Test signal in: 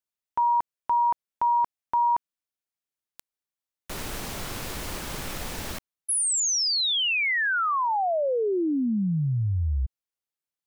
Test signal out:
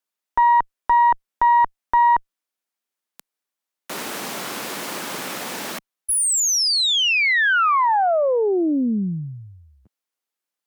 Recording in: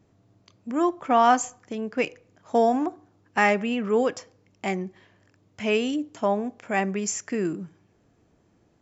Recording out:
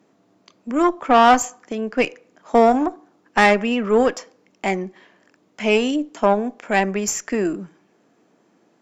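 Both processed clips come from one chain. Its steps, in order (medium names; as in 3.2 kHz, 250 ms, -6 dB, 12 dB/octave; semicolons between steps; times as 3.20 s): high-pass 190 Hz 24 dB/octave; peaking EQ 1.2 kHz +2.5 dB 2.1 oct; valve stage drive 13 dB, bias 0.6; trim +8 dB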